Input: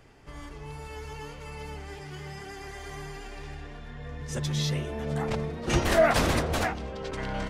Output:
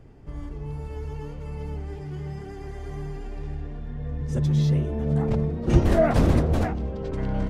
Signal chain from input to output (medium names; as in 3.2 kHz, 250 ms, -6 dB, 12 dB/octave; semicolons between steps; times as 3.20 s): tilt shelf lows +9.5 dB, about 670 Hz